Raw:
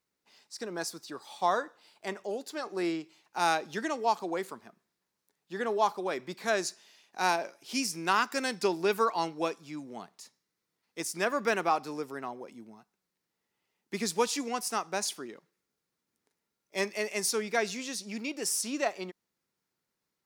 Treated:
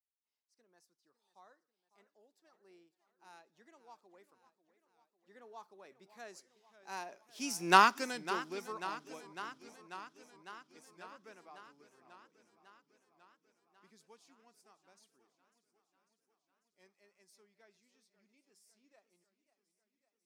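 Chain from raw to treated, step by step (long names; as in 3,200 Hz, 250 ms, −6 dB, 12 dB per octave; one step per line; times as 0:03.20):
source passing by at 0:07.76, 15 m/s, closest 1.1 metres
feedback echo with a swinging delay time 547 ms, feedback 69%, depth 169 cents, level −15 dB
level +5 dB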